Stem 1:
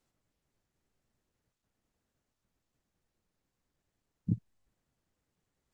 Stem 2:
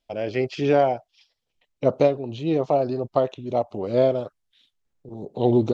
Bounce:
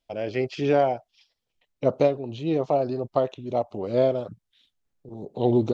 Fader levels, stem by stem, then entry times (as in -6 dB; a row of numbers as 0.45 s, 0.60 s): -13.5 dB, -2.0 dB; 0.00 s, 0.00 s